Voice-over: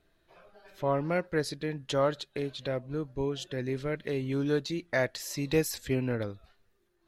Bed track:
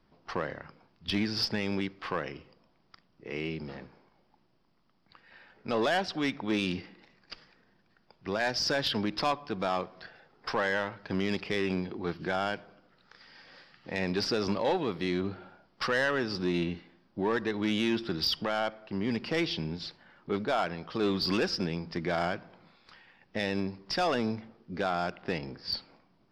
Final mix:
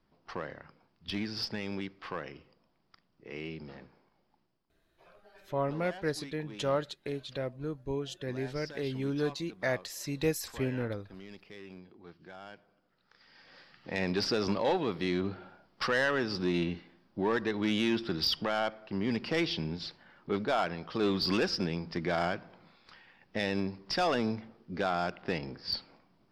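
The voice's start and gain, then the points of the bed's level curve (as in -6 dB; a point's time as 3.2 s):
4.70 s, -3.0 dB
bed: 4.39 s -5.5 dB
4.86 s -18 dB
12.37 s -18 dB
13.7 s -0.5 dB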